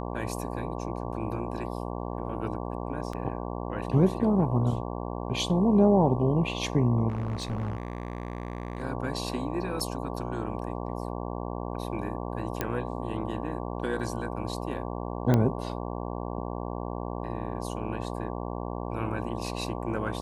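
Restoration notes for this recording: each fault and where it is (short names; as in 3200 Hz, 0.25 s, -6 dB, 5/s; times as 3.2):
buzz 60 Hz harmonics 19 -34 dBFS
3.13 gap 3.6 ms
7.08–8.84 clipped -27.5 dBFS
9.8 gap 2.8 ms
12.61 pop -13 dBFS
15.34 pop -12 dBFS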